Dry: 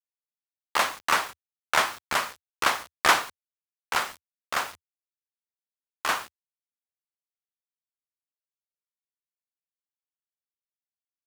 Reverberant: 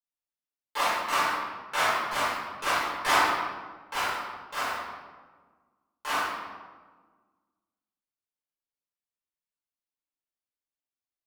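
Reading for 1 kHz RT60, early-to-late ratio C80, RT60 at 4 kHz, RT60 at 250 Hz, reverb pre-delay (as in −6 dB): 1.4 s, 0.5 dB, 0.90 s, 2.0 s, 5 ms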